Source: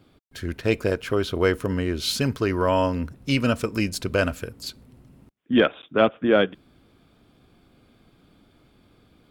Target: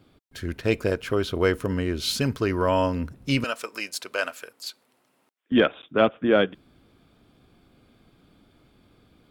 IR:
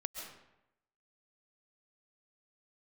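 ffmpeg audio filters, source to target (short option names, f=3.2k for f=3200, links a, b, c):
-filter_complex "[0:a]asettb=1/sr,asplit=3[a][b][c];[a]atrim=end=3.444[d];[b]atrim=start=3.44:end=5.52,asetpts=PTS-STARTPTS,afade=t=in:d=0.004:c=qsin,afade=t=out:st=2.076:d=0.004:c=qsin,highpass=700[e];[c]atrim=start=5.516[f];[d][e]acrossfade=d=0.004:c1=hsin:c2=qsin[g];[g][f]acrossfade=d=0.004:c1=qsin:c2=hsin,volume=-1dB"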